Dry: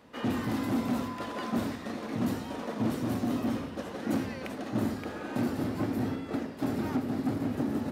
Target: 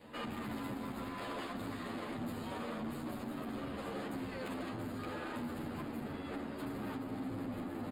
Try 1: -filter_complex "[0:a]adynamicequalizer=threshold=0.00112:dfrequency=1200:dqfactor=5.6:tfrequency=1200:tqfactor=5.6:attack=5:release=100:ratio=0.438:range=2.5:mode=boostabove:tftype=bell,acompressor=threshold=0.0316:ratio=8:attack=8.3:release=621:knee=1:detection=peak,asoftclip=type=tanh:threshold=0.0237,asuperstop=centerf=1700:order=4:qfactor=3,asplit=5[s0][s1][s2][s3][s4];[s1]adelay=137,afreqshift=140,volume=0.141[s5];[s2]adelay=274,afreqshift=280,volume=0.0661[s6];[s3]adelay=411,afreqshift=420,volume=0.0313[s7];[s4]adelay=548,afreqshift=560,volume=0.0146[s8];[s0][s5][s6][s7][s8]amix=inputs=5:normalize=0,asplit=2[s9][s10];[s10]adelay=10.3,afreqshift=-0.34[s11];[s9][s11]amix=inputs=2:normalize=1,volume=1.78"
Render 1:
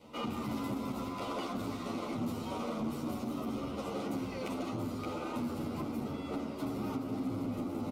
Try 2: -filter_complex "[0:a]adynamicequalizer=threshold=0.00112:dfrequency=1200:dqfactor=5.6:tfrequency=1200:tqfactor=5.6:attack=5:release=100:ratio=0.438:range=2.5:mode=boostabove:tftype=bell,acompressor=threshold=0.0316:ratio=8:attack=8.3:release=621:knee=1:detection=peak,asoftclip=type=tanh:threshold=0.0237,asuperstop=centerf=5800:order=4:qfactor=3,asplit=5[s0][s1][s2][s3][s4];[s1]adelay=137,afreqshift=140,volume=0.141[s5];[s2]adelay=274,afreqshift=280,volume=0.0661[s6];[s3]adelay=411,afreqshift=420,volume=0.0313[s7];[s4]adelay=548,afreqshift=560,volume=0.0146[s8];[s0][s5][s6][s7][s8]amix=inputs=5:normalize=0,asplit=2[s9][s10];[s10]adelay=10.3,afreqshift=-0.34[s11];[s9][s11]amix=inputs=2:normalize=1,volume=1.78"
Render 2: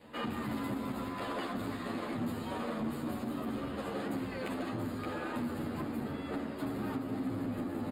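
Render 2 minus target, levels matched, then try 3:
saturation: distortion -7 dB
-filter_complex "[0:a]adynamicequalizer=threshold=0.00112:dfrequency=1200:dqfactor=5.6:tfrequency=1200:tqfactor=5.6:attack=5:release=100:ratio=0.438:range=2.5:mode=boostabove:tftype=bell,acompressor=threshold=0.0316:ratio=8:attack=8.3:release=621:knee=1:detection=peak,asoftclip=type=tanh:threshold=0.00944,asuperstop=centerf=5800:order=4:qfactor=3,asplit=5[s0][s1][s2][s3][s4];[s1]adelay=137,afreqshift=140,volume=0.141[s5];[s2]adelay=274,afreqshift=280,volume=0.0661[s6];[s3]adelay=411,afreqshift=420,volume=0.0313[s7];[s4]adelay=548,afreqshift=560,volume=0.0146[s8];[s0][s5][s6][s7][s8]amix=inputs=5:normalize=0,asplit=2[s9][s10];[s10]adelay=10.3,afreqshift=-0.34[s11];[s9][s11]amix=inputs=2:normalize=1,volume=1.78"

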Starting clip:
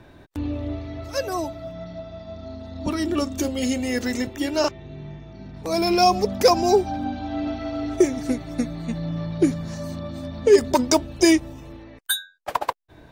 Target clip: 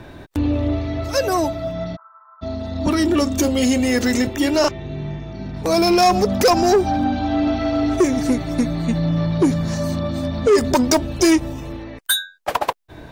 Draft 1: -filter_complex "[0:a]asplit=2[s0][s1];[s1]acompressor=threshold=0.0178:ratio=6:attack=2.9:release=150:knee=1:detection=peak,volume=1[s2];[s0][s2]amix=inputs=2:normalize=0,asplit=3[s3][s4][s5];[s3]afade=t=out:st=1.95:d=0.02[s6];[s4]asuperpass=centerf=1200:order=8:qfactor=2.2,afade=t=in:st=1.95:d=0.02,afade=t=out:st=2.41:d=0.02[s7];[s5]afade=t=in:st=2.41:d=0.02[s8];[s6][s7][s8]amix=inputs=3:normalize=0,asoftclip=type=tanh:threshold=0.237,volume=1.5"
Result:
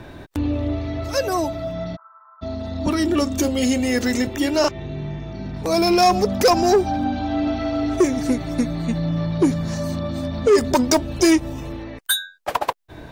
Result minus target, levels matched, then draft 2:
compression: peak gain reduction +10 dB
-filter_complex "[0:a]asplit=2[s0][s1];[s1]acompressor=threshold=0.0708:ratio=6:attack=2.9:release=150:knee=1:detection=peak,volume=1[s2];[s0][s2]amix=inputs=2:normalize=0,asplit=3[s3][s4][s5];[s3]afade=t=out:st=1.95:d=0.02[s6];[s4]asuperpass=centerf=1200:order=8:qfactor=2.2,afade=t=in:st=1.95:d=0.02,afade=t=out:st=2.41:d=0.02[s7];[s5]afade=t=in:st=2.41:d=0.02[s8];[s6][s7][s8]amix=inputs=3:normalize=0,asoftclip=type=tanh:threshold=0.237,volume=1.5"

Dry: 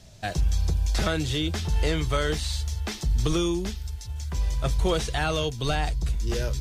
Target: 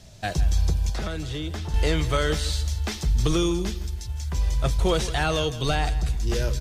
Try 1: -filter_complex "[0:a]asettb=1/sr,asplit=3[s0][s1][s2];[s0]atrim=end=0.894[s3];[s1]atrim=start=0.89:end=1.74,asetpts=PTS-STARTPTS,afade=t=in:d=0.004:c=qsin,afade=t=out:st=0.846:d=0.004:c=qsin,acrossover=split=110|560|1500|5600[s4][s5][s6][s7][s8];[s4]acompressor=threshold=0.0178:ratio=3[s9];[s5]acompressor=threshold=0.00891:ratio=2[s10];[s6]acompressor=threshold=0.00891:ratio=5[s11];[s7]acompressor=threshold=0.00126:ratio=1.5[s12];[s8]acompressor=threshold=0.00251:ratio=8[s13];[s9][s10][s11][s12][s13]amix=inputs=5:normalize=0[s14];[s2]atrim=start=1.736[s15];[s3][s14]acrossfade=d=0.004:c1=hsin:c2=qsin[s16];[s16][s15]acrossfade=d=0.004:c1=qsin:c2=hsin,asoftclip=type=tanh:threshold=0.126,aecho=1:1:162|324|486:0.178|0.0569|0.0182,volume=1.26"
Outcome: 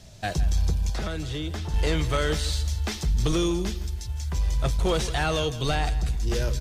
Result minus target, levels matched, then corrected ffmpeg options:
saturation: distortion +21 dB
-filter_complex "[0:a]asettb=1/sr,asplit=3[s0][s1][s2];[s0]atrim=end=0.894[s3];[s1]atrim=start=0.89:end=1.74,asetpts=PTS-STARTPTS,afade=t=in:d=0.004:c=qsin,afade=t=out:st=0.846:d=0.004:c=qsin,acrossover=split=110|560|1500|5600[s4][s5][s6][s7][s8];[s4]acompressor=threshold=0.0178:ratio=3[s9];[s5]acompressor=threshold=0.00891:ratio=2[s10];[s6]acompressor=threshold=0.00891:ratio=5[s11];[s7]acompressor=threshold=0.00126:ratio=1.5[s12];[s8]acompressor=threshold=0.00251:ratio=8[s13];[s9][s10][s11][s12][s13]amix=inputs=5:normalize=0[s14];[s2]atrim=start=1.736[s15];[s3][s14]acrossfade=d=0.004:c1=hsin:c2=qsin[s16];[s16][s15]acrossfade=d=0.004:c1=qsin:c2=hsin,asoftclip=type=tanh:threshold=0.501,aecho=1:1:162|324|486:0.178|0.0569|0.0182,volume=1.26"

